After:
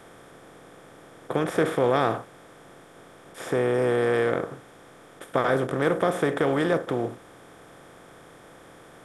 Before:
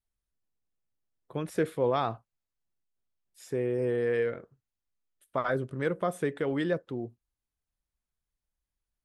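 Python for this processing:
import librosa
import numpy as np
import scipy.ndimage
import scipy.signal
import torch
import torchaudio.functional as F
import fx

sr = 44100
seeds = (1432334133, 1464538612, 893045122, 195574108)

y = fx.bin_compress(x, sr, power=0.4)
y = y * 10.0 ** (1.5 / 20.0)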